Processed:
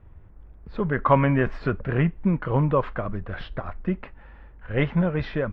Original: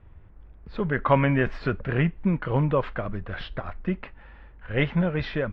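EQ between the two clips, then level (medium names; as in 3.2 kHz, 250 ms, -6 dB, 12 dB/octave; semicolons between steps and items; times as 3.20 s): peaking EQ 3.7 kHz -5.5 dB 2.2 oct; dynamic bell 1.1 kHz, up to +4 dB, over -43 dBFS, Q 3.9; +1.5 dB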